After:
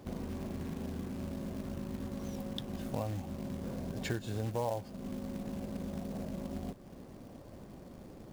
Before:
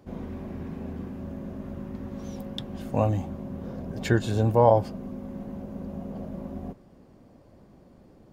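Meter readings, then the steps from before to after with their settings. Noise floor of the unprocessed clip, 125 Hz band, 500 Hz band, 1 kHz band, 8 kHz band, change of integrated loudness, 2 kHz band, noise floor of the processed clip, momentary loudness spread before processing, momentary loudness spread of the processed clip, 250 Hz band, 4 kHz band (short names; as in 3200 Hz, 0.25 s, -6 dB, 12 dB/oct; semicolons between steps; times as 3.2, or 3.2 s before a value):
-55 dBFS, -10.5 dB, -13.5 dB, -14.5 dB, -2.5 dB, -10.5 dB, -9.5 dB, -52 dBFS, 16 LU, 14 LU, -6.5 dB, -5.0 dB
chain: compressor 3:1, threshold -42 dBFS, peak gain reduction 21 dB; short-mantissa float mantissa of 2-bit; gain +3.5 dB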